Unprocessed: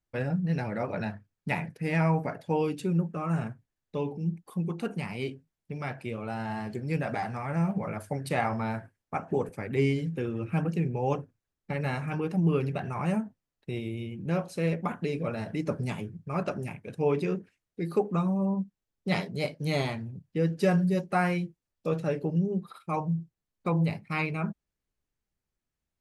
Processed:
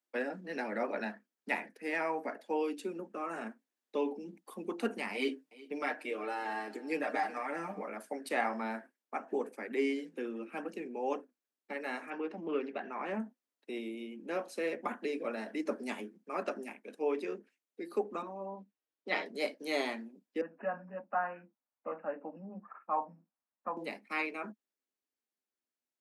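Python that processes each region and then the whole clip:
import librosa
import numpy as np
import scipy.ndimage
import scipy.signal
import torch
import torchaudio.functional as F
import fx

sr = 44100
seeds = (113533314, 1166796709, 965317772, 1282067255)

y = fx.chain(x, sr, fx.comb(ms=6.6, depth=0.99),
    fx.echo_single(ms=369, db=-18.5), at=(5.14, 7.83))
y = fx.chain(y, sr, fx.lowpass(hz=3600.0, slope=12),
    fx.doppler_dist(depth_ms=0.16), at=(12.1, 13.2))
y = fx.chain(y, sr, fx.bandpass_edges(low_hz=260.0, high_hz=3900.0),
    fx.comb(ms=6.4, depth=0.35), at=(18.22, 19.26))
y = fx.chain(y, sr, fx.steep_lowpass(hz=5200.0, slope=36),
    fx.fixed_phaser(hz=930.0, stages=4),
    fx.resample_bad(factor=8, down='none', up='filtered'), at=(20.41, 23.77))
y = scipy.signal.sosfilt(scipy.signal.butter(12, 220.0, 'highpass', fs=sr, output='sos'), y)
y = fx.rider(y, sr, range_db=10, speed_s=2.0)
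y = fx.dynamic_eq(y, sr, hz=1800.0, q=4.4, threshold_db=-53.0, ratio=4.0, max_db=5)
y = F.gain(torch.from_numpy(y), -4.5).numpy()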